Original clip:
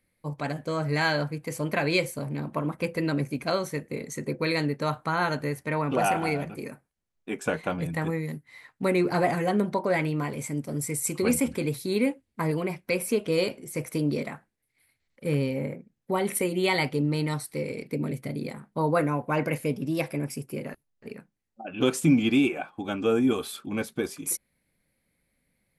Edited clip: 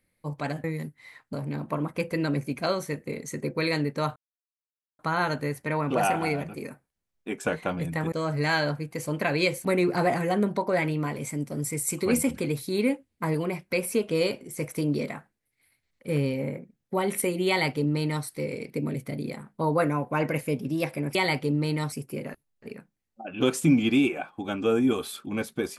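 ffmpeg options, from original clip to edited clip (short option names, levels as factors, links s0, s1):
-filter_complex "[0:a]asplit=8[s0][s1][s2][s3][s4][s5][s6][s7];[s0]atrim=end=0.642[s8];[s1]atrim=start=8.128:end=8.822[s9];[s2]atrim=start=2.168:end=5,asetpts=PTS-STARTPTS,afade=t=out:st=2.828:d=0.004:c=hsin,apad=pad_dur=0.83[s10];[s3]atrim=start=5:end=8.132,asetpts=PTS-STARTPTS,afade=t=in:d=0.004:c=hsin[s11];[s4]atrim=start=0.638:end=2.172[s12];[s5]atrim=start=8.818:end=20.322[s13];[s6]atrim=start=16.648:end=17.422[s14];[s7]atrim=start=20.318[s15];[s8][s9]acrossfade=d=0.004:c1=hsin:c2=hsin[s16];[s10][s11]concat=n=2:v=0:a=1[s17];[s16][s17]acrossfade=d=0.004:c1=hsin:c2=hsin[s18];[s18][s12]acrossfade=d=0.004:c1=hsin:c2=hsin[s19];[s19][s13]acrossfade=d=0.004:c1=hsin:c2=hsin[s20];[s20][s14]acrossfade=d=0.004:c1=hsin:c2=hsin[s21];[s21][s15]acrossfade=d=0.004:c1=hsin:c2=hsin"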